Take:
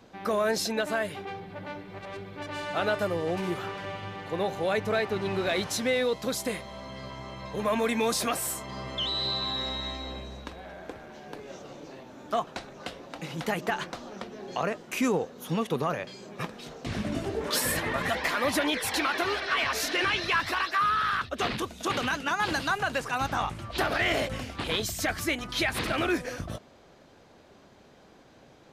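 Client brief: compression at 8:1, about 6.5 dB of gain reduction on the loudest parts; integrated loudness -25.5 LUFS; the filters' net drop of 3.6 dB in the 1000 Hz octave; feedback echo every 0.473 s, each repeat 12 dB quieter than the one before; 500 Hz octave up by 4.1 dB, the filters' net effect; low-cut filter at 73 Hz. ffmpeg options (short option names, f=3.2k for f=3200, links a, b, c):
-af "highpass=73,equalizer=f=500:t=o:g=7,equalizer=f=1k:t=o:g=-7.5,acompressor=threshold=-26dB:ratio=8,aecho=1:1:473|946|1419:0.251|0.0628|0.0157,volume=6.5dB"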